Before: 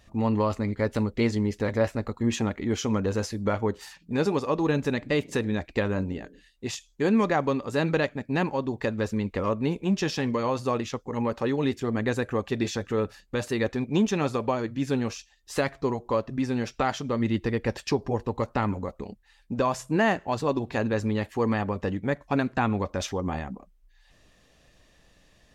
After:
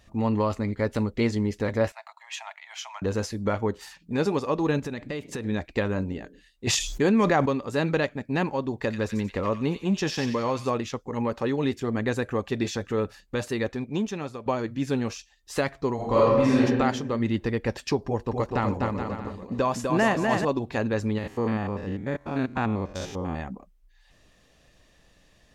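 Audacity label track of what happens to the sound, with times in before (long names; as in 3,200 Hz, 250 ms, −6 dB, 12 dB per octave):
1.920000	3.020000	Chebyshev high-pass with heavy ripple 640 Hz, ripple 6 dB
4.790000	5.450000	downward compressor, threshold −28 dBFS
6.670000	7.460000	envelope flattener amount 70%
8.760000	10.700000	delay with a high-pass on its return 91 ms, feedback 43%, high-pass 2,100 Hz, level −5 dB
13.390000	14.460000	fade out linear, to −11.5 dB
15.950000	16.610000	thrown reverb, RT60 1.3 s, DRR −8 dB
18.050000	20.450000	bouncing-ball delay first gap 250 ms, each gap 0.7×, echoes 5
21.180000	23.400000	spectrum averaged block by block every 100 ms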